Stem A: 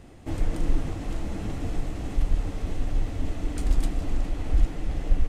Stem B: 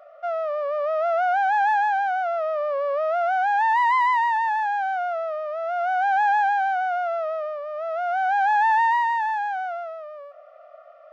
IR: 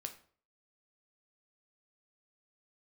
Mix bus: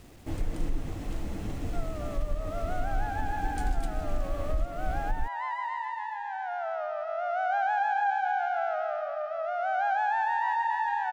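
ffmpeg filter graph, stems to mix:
-filter_complex "[0:a]acrusher=bits=8:mix=0:aa=0.000001,volume=-3.5dB[link_01];[1:a]adelay=1500,volume=-6.5dB,afade=type=in:start_time=6.21:duration=0.51:silence=0.375837,asplit=2[link_02][link_03];[link_03]volume=-4dB,aecho=0:1:276|552|828|1104|1380|1656:1|0.46|0.212|0.0973|0.0448|0.0206[link_04];[link_01][link_02][link_04]amix=inputs=3:normalize=0,alimiter=limit=-19dB:level=0:latency=1:release=228"

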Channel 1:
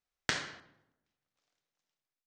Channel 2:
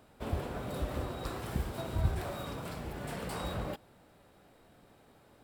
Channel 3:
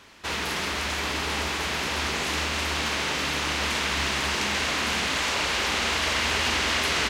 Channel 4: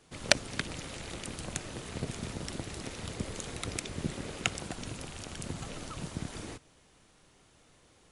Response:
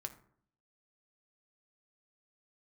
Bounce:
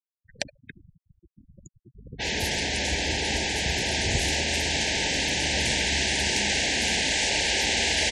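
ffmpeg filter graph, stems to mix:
-filter_complex "[0:a]asubboost=boost=10.5:cutoff=96,volume=19dB,asoftclip=hard,volume=-19dB,volume=-14dB,asplit=2[link_01][link_02];[link_02]volume=-16.5dB[link_03];[1:a]highshelf=frequency=12000:gain=9,adelay=2100,volume=0.5dB[link_04];[2:a]aeval=exprs='val(0)+0.00501*(sin(2*PI*50*n/s)+sin(2*PI*2*50*n/s)/2+sin(2*PI*3*50*n/s)/3+sin(2*PI*4*50*n/s)/4+sin(2*PI*5*50*n/s)/5)':channel_layout=same,adynamicequalizer=threshold=0.00794:dfrequency=5200:dqfactor=0.7:tfrequency=5200:tqfactor=0.7:attack=5:release=100:ratio=0.375:range=3.5:mode=boostabove:tftype=highshelf,adelay=1950,volume=0dB,asplit=2[link_05][link_06];[link_06]volume=-15.5dB[link_07];[3:a]adelay=100,volume=-7dB,asplit=2[link_08][link_09];[link_09]volume=-15dB[link_10];[4:a]atrim=start_sample=2205[link_11];[link_03][link_07]amix=inputs=2:normalize=0[link_12];[link_12][link_11]afir=irnorm=-1:irlink=0[link_13];[link_10]aecho=0:1:72|144|216|288|360|432:1|0.42|0.176|0.0741|0.0311|0.0131[link_14];[link_01][link_04][link_05][link_08][link_13][link_14]amix=inputs=6:normalize=0,afftfilt=real='re*gte(hypot(re,im),0.0251)':imag='im*gte(hypot(re,im),0.0251)':win_size=1024:overlap=0.75,asuperstop=centerf=1200:order=12:qfactor=1.8"

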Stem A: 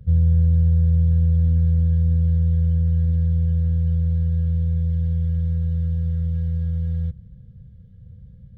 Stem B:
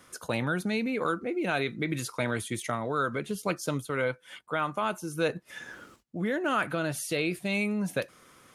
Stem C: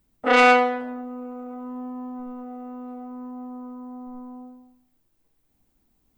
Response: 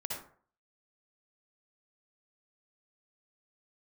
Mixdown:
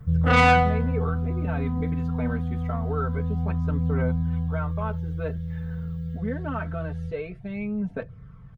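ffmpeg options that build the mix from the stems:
-filter_complex "[0:a]aecho=1:1:6.6:0.55,volume=-5dB[link_01];[1:a]lowpass=1400,aecho=1:1:4.5:0.93,volume=-6dB[link_02];[2:a]volume=-3dB[link_03];[link_01][link_02][link_03]amix=inputs=3:normalize=0,aphaser=in_gain=1:out_gain=1:delay=4.6:decay=0.37:speed=0.25:type=triangular"

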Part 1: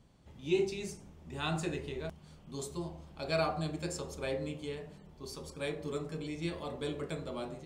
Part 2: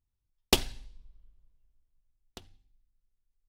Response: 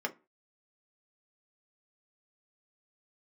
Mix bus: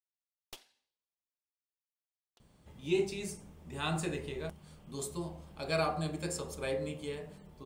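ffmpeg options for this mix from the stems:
-filter_complex "[0:a]aexciter=amount=1.4:drive=8.3:freq=8300,adelay=2400,volume=-0.5dB,asplit=2[link_01][link_02];[link_02]volume=-16.5dB[link_03];[1:a]highpass=510,aeval=exprs='(tanh(12.6*val(0)+0.6)-tanh(0.6))/12.6':channel_layout=same,volume=-18dB[link_04];[2:a]atrim=start_sample=2205[link_05];[link_03][link_05]afir=irnorm=-1:irlink=0[link_06];[link_01][link_04][link_06]amix=inputs=3:normalize=0"

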